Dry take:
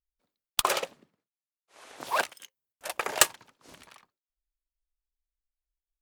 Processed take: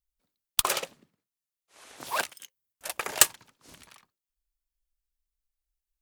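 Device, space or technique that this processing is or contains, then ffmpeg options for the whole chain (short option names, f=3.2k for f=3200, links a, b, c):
smiley-face EQ: -af "lowshelf=f=200:g=5,equalizer=f=590:t=o:w=2.2:g=-3.5,highshelf=f=5.7k:g=6,volume=-1dB"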